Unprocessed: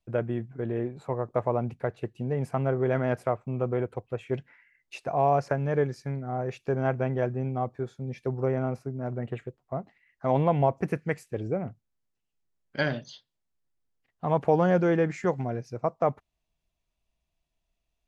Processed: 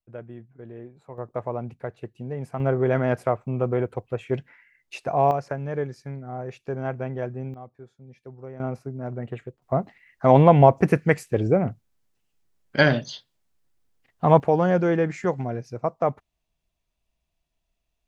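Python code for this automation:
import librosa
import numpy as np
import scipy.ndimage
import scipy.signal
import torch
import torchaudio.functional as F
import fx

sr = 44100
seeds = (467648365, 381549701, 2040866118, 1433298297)

y = fx.gain(x, sr, db=fx.steps((0.0, -10.5), (1.18, -3.0), (2.6, 4.0), (5.31, -2.5), (7.54, -12.5), (8.6, 0.5), (9.62, 9.5), (14.4, 2.0)))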